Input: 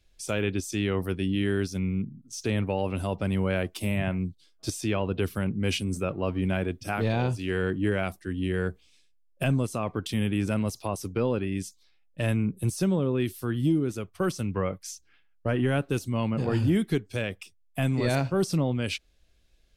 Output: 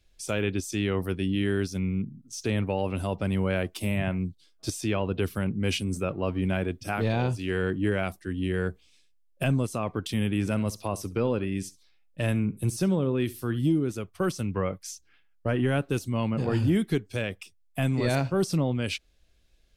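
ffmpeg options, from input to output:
-filter_complex "[0:a]asettb=1/sr,asplit=3[a][b][c];[a]atrim=end=10.314[d];[b]atrim=start=10.31:end=13.59,asetpts=PTS-STARTPTS,afade=t=in:d=0.004:c=qsin,afade=t=out:st=3.276:d=0.004:c=qsin,aecho=1:1:67|134:0.106|0.018,atrim=end_sample=144648[e];[c]atrim=start=13.586[f];[d][e]acrossfade=d=0.004:c1=hsin:c2=qsin[g];[g][f]acrossfade=d=0.004:c1=qsin:c2=hsin"

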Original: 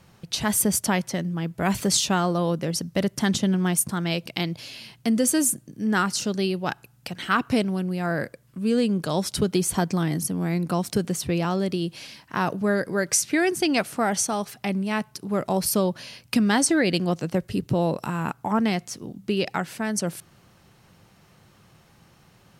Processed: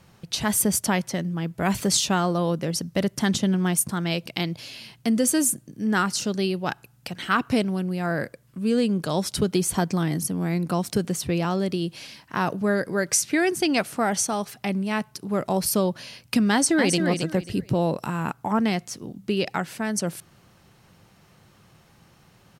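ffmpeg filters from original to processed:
-filter_complex "[0:a]asplit=2[a][b];[b]afade=t=in:st=16.51:d=0.01,afade=t=out:st=16.96:d=0.01,aecho=0:1:270|540|810:0.501187|0.125297|0.0313242[c];[a][c]amix=inputs=2:normalize=0"

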